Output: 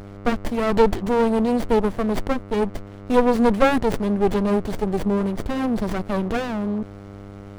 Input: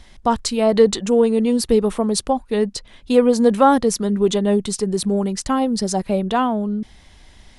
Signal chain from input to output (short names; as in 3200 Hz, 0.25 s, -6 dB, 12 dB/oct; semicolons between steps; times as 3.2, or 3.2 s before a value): buzz 100 Hz, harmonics 12, -39 dBFS -3 dB/oct; running maximum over 33 samples